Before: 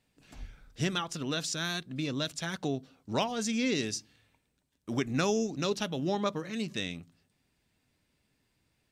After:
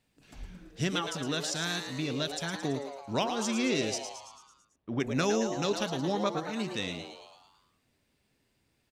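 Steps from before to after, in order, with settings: 3.98–5 air absorption 380 m; on a send: frequency-shifting echo 0.111 s, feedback 57%, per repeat +140 Hz, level -8 dB

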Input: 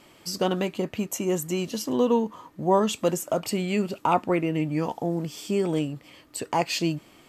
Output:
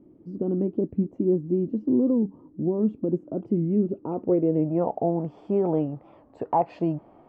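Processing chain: limiter -16.5 dBFS, peak gain reduction 7.5 dB; low-pass sweep 310 Hz -> 780 Hz, 3.76–5.1; record warp 45 rpm, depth 160 cents

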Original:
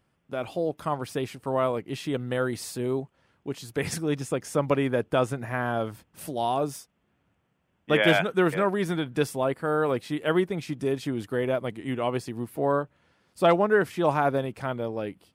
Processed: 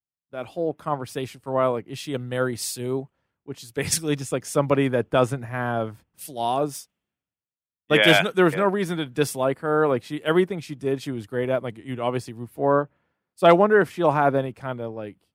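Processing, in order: in parallel at +2.5 dB: limiter -15 dBFS, peak gain reduction 7 dB; on the sum: three-band expander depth 100%; gain -4 dB

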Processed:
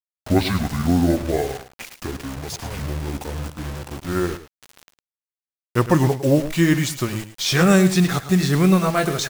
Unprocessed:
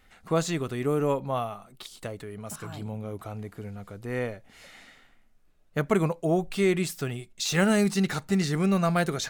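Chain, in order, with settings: gliding pitch shift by -10 st ending unshifted; bit-crush 7-bit; echo 0.107 s -12.5 dB; gain +8.5 dB

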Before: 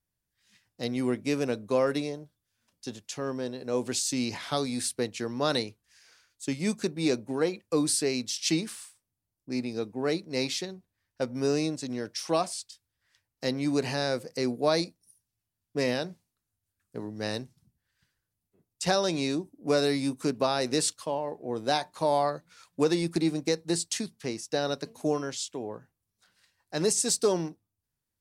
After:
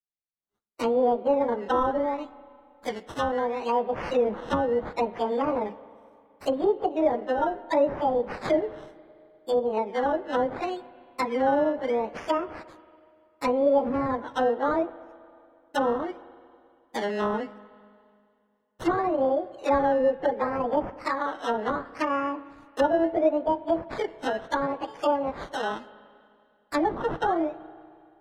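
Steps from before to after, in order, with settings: pitch shift by moving bins +11.5 st; expander -53 dBFS; high shelf 2400 Hz -10.5 dB; in parallel at -2 dB: compressor, threshold -38 dBFS, peak gain reduction 14.5 dB; on the sum: decimation with a swept rate 15×, swing 60% 0.71 Hz; treble ducked by the level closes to 790 Hz, closed at -27.5 dBFS; spring tank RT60 2.4 s, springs 32/39/48 ms, chirp 25 ms, DRR 16.5 dB; gain +7.5 dB

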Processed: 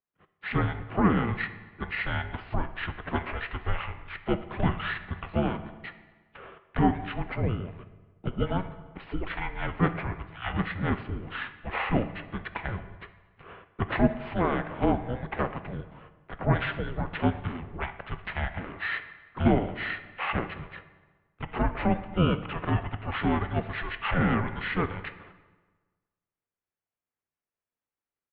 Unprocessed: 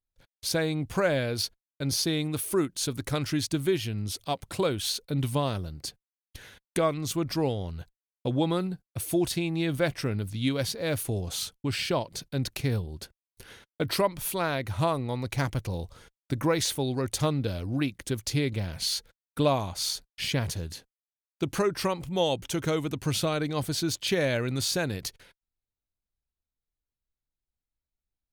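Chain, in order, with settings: low shelf 250 Hz -6.5 dB; bands offset in time highs, lows 0.18 s, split 160 Hz; harmoniser -12 st -2 dB, +3 st -12 dB; air absorption 410 m; on a send at -9 dB: reverb RT60 1.4 s, pre-delay 3 ms; on the sum: mistuned SSB -360 Hz 410–3400 Hz; gain +5.5 dB

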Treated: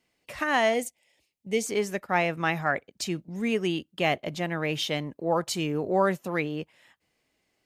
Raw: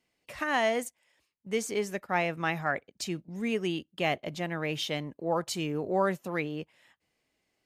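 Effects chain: 0.74–1.66 band shelf 1300 Hz -11.5 dB 1 oct; gain +3.5 dB

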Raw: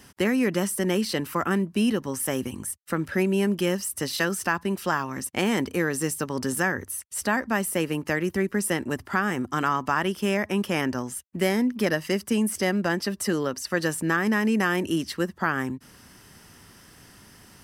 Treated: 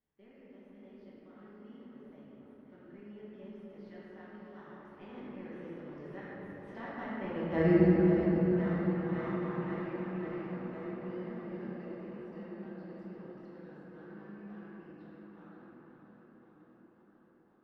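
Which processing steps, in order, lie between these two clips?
Doppler pass-by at 7.66, 24 m/s, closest 1.5 m; on a send: tape echo 0.531 s, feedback 77%, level -7 dB, low-pass 3400 Hz; on the sum: dynamic EQ 360 Hz, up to -6 dB, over -52 dBFS, Q 0.76; treble ducked by the level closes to 1100 Hz, closed at -39.5 dBFS; in parallel at -8 dB: sample-rate reducer 2400 Hz, jitter 0%; on the sum: air absorption 330 m; shoebox room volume 160 m³, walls hard, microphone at 1.2 m

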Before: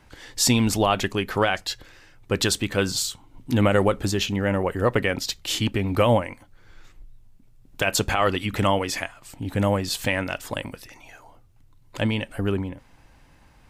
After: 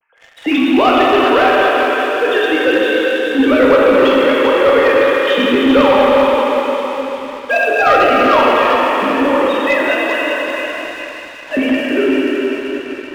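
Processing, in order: sine-wave speech; plate-style reverb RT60 4.5 s, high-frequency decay 0.95×, DRR -6.5 dB; sample leveller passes 2; on a send: thin delay 0.406 s, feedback 45%, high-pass 1600 Hz, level -5 dB; on the sum: speed mistake 24 fps film run at 25 fps; gain -1.5 dB

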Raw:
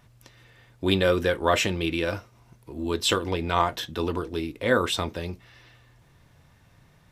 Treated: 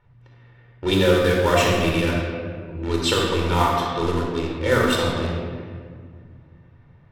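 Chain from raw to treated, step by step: in parallel at -6 dB: bit-crush 4-bit; on the sum: shoebox room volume 3600 m³, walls mixed, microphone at 4.4 m; low-pass opened by the level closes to 2100 Hz, open at -10 dBFS; 1.24–1.72 crackle 220/s -30 dBFS; gain -5.5 dB

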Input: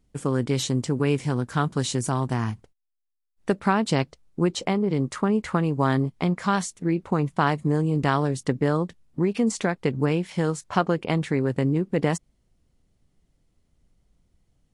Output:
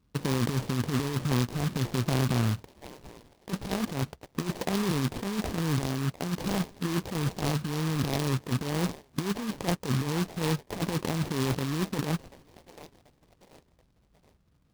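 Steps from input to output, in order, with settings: transient shaper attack +2 dB, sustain +7 dB; HPF 53 Hz; tape spacing loss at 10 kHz 38 dB; on a send: delay with a stepping band-pass 0.734 s, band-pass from 1200 Hz, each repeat 0.7 oct, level -11 dB; on the sum: sample-rate reducer 1400 Hz, jitter 20%; negative-ratio compressor -25 dBFS, ratio -0.5; noise-modulated delay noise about 3000 Hz, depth 0.077 ms; gain -2 dB

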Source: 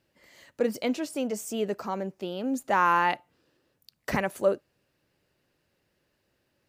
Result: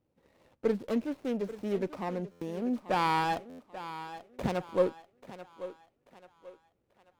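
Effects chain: median filter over 25 samples; varispeed -7%; on a send: thinning echo 0.837 s, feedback 40%, high-pass 340 Hz, level -12.5 dB; on the sum: stuck buffer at 2.31/3.49, samples 512, times 8; running maximum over 5 samples; gain -2 dB

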